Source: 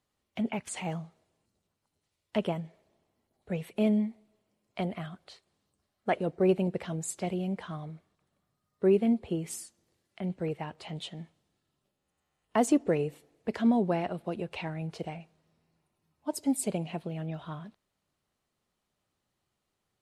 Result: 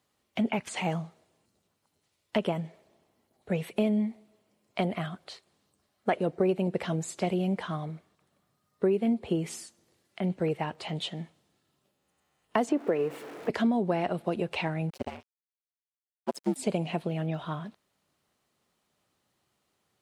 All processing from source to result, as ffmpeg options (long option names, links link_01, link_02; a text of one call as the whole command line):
ffmpeg -i in.wav -filter_complex "[0:a]asettb=1/sr,asplit=3[link_01][link_02][link_03];[link_01]atrim=end=12.694[link_04];[link_02]atrim=start=12.69:end=13.5,asetpts=PTS-STARTPTS,afade=type=in:duration=0.004:curve=qsin,afade=type=out:start_time=0.806:duration=0.004:curve=qsin,aeval=exprs='val(0)+0.5*0.00794*sgn(val(0))':channel_layout=same,acrossover=split=230 2600:gain=0.224 1 0.251[link_05][link_06][link_07];[link_05][link_06][link_07]amix=inputs=3:normalize=0[link_08];[link_03]atrim=start=13.496[link_09];[link_04][link_08]acrossfade=duration=0.004:curve1=hsin:curve2=qsin[link_10];[link_10][link_09]acrossfade=duration=0.004:curve1=qsin:curve2=hsin,asettb=1/sr,asplit=3[link_11][link_12][link_13];[link_11]atrim=end=14.904[link_14];[link_12]atrim=start=14.9:end=16.56,asetpts=PTS-STARTPTS,afade=type=in:duration=0.004:curve=qsin,afade=type=out:start_time=1.656:duration=0.004:curve=qsin,highpass=frequency=61:width=0.5412,highpass=frequency=61:width=1.3066,aeval=exprs='sgn(val(0))*max(abs(val(0))-0.00562,0)':channel_layout=same,aeval=exprs='val(0)*sin(2*PI*71*n/s)':channel_layout=same[link_15];[link_13]atrim=start=16.556[link_16];[link_14][link_15]acrossfade=duration=0.004:curve1=hsin:curve2=qsin[link_17];[link_17][link_16]acrossfade=duration=0.004:curve1=qsin:curve2=hsin,acrossover=split=5800[link_18][link_19];[link_19]acompressor=threshold=-53dB:ratio=4:attack=1:release=60[link_20];[link_18][link_20]amix=inputs=2:normalize=0,highpass=frequency=130:poles=1,acompressor=threshold=-29dB:ratio=6,volume=6.5dB" out.wav